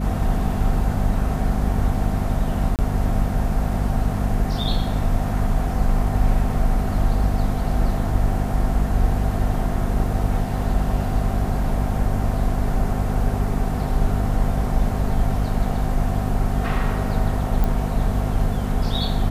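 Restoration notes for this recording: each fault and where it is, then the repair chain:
hum 50 Hz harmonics 5 -25 dBFS
2.76–2.79 gap 28 ms
17.64 pop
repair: de-click; de-hum 50 Hz, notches 5; interpolate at 2.76, 28 ms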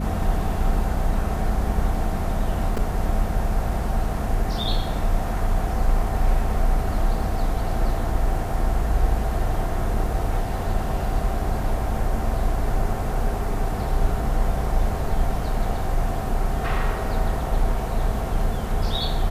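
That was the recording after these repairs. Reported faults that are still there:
none

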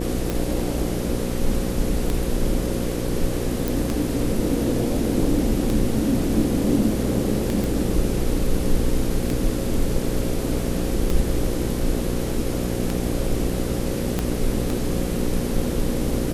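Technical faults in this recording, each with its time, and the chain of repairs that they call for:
buzz 60 Hz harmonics 9 -27 dBFS
tick 33 1/3 rpm
3.68 pop
7.64 pop
14.19 pop -9 dBFS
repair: de-click; de-hum 60 Hz, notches 9

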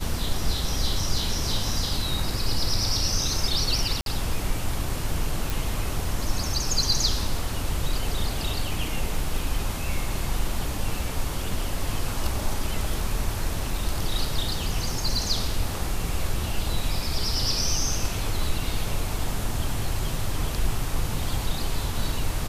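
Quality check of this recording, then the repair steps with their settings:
4.01–4.06 gap 52 ms
5.5 pop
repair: de-click; interpolate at 4.01, 52 ms

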